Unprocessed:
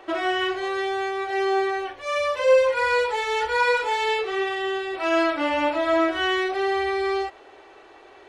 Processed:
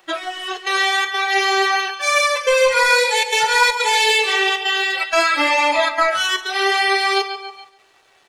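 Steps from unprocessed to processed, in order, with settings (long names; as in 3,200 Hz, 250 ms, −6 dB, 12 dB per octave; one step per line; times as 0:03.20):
spectral tilt +4.5 dB per octave
flutter between parallel walls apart 11.8 metres, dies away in 0.21 s
leveller curve on the samples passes 2
in parallel at +3 dB: downward compressor, threshold −20 dBFS, peak gain reduction 7.5 dB
on the sum: gate pattern "xxxxxx.xxxx.xx" 158 BPM −24 dB
flanger 0.54 Hz, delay 5.3 ms, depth 9.4 ms, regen +60%
on a send: repeating echo 140 ms, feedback 57%, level −9.5 dB
on the sum: noise reduction from a noise print of the clip's start 15 dB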